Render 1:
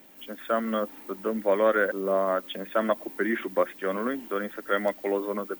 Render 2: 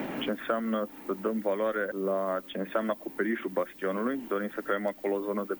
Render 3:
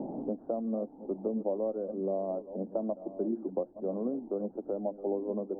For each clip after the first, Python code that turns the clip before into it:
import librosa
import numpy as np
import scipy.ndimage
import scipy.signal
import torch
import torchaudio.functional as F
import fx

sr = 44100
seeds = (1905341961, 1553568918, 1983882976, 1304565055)

y1 = fx.low_shelf(x, sr, hz=240.0, db=6.0)
y1 = fx.band_squash(y1, sr, depth_pct=100)
y1 = y1 * 10.0 ** (-5.5 / 20.0)
y2 = fx.reverse_delay(y1, sr, ms=669, wet_db=-13.5)
y2 = scipy.signal.sosfilt(scipy.signal.ellip(4, 1.0, 60, 800.0, 'lowpass', fs=sr, output='sos'), y2)
y2 = y2 * 10.0 ** (-2.0 / 20.0)